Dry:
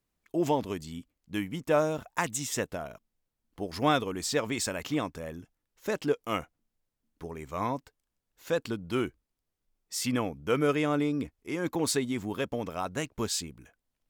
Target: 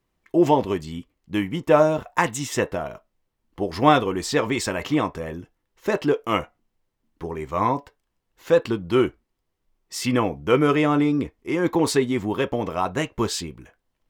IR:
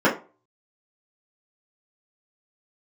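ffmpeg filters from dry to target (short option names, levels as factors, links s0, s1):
-filter_complex "[0:a]highshelf=f=3900:g=-9.5,asplit=2[s0][s1];[1:a]atrim=start_sample=2205,asetrate=83790,aresample=44100,highshelf=f=3500:g=9.5[s2];[s1][s2]afir=irnorm=-1:irlink=0,volume=0.0562[s3];[s0][s3]amix=inputs=2:normalize=0,volume=2.66"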